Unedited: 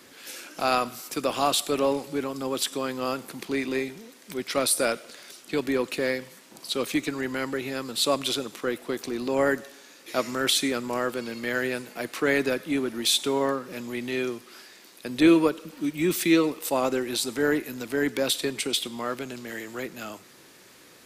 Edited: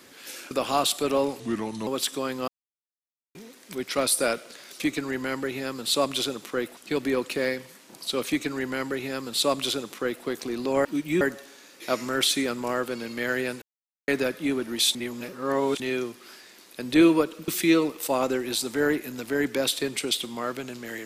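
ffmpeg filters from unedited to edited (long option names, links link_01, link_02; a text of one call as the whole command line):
ffmpeg -i in.wav -filter_complex "[0:a]asplit=15[link_01][link_02][link_03][link_04][link_05][link_06][link_07][link_08][link_09][link_10][link_11][link_12][link_13][link_14][link_15];[link_01]atrim=end=0.512[link_16];[link_02]atrim=start=1.188:end=2.084[link_17];[link_03]atrim=start=2.08:end=2.46,asetpts=PTS-STARTPTS,asetrate=35721,aresample=44100[link_18];[link_04]atrim=start=2.456:end=3.07,asetpts=PTS-STARTPTS,afade=type=out:start_time=0.61:duration=0.004:curve=hsin[link_19];[link_05]atrim=start=3.07:end=3.94,asetpts=PTS-STARTPTS,volume=0[link_20];[link_06]atrim=start=3.94:end=5.392,asetpts=PTS-STARTPTS,afade=type=in:duration=0.004:curve=hsin[link_21];[link_07]atrim=start=6.898:end=8.872[link_22];[link_08]atrim=start=5.388:end=9.472[link_23];[link_09]atrim=start=15.738:end=16.102[link_24];[link_10]atrim=start=9.468:end=11.88,asetpts=PTS-STARTPTS,afade=type=out:start_time=2.408:duration=0.004:curve=hsin[link_25];[link_11]atrim=start=11.88:end=12.34,asetpts=PTS-STARTPTS,volume=0[link_26];[link_12]atrim=start=12.34:end=13.212,asetpts=PTS-STARTPTS,afade=type=in:duration=0.004:curve=hsin[link_27];[link_13]atrim=start=13.208:end=14.062,asetpts=PTS-STARTPTS,areverse[link_28];[link_14]atrim=start=14.058:end=15.742[link_29];[link_15]atrim=start=16.098[link_30];[link_16][link_17]acrossfade=duration=0.004:curve1=hsin:curve2=hsin[link_31];[link_31][link_18]acrossfade=duration=0.004:curve1=hsin:curve2=hsin[link_32];[link_19][link_20][link_21]concat=n=3:v=0:a=1[link_33];[link_32][link_33]acrossfade=duration=0.004:curve1=hsin:curve2=hsin[link_34];[link_34][link_22]acrossfade=duration=0.004:curve1=hsin:curve2=hsin[link_35];[link_35][link_23]acrossfade=duration=0.004:curve1=hsin:curve2=hsin[link_36];[link_36][link_24]acrossfade=duration=0.004:curve1=hsin:curve2=hsin[link_37];[link_25][link_26][link_27]concat=n=3:v=0:a=1[link_38];[link_37][link_38]acrossfade=duration=0.004:curve1=hsin:curve2=hsin[link_39];[link_39][link_28]acrossfade=duration=0.004:curve1=hsin:curve2=hsin[link_40];[link_40][link_29]acrossfade=duration=0.004:curve1=hsin:curve2=hsin[link_41];[link_41][link_30]acrossfade=duration=0.004:curve1=hsin:curve2=hsin" out.wav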